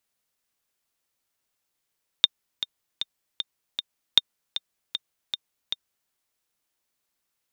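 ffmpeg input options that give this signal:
ffmpeg -f lavfi -i "aevalsrc='pow(10,(-1.5-12.5*gte(mod(t,5*60/155),60/155))/20)*sin(2*PI*3640*mod(t,60/155))*exp(-6.91*mod(t,60/155)/0.03)':duration=3.87:sample_rate=44100" out.wav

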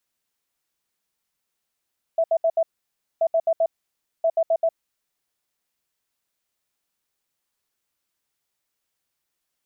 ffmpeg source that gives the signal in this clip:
ffmpeg -f lavfi -i "aevalsrc='0.158*sin(2*PI*658*t)*clip(min(mod(mod(t,1.03),0.13),0.06-mod(mod(t,1.03),0.13))/0.005,0,1)*lt(mod(t,1.03),0.52)':duration=3.09:sample_rate=44100" out.wav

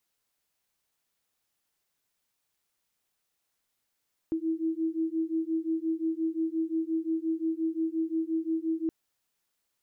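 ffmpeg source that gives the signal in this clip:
ffmpeg -f lavfi -i "aevalsrc='0.0316*(sin(2*PI*321*t)+sin(2*PI*326.7*t))':duration=4.57:sample_rate=44100" out.wav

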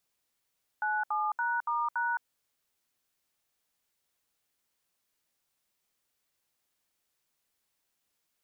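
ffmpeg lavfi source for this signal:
ffmpeg -f lavfi -i "aevalsrc='0.0316*clip(min(mod(t,0.284),0.215-mod(t,0.284))/0.002,0,1)*(eq(floor(t/0.284),0)*(sin(2*PI*852*mod(t,0.284))+sin(2*PI*1477*mod(t,0.284)))+eq(floor(t/0.284),1)*(sin(2*PI*852*mod(t,0.284))+sin(2*PI*1209*mod(t,0.284)))+eq(floor(t/0.284),2)*(sin(2*PI*941*mod(t,0.284))+sin(2*PI*1477*mod(t,0.284)))+eq(floor(t/0.284),3)*(sin(2*PI*941*mod(t,0.284))+sin(2*PI*1209*mod(t,0.284)))+eq(floor(t/0.284),4)*(sin(2*PI*941*mod(t,0.284))+sin(2*PI*1477*mod(t,0.284))))':duration=1.42:sample_rate=44100" out.wav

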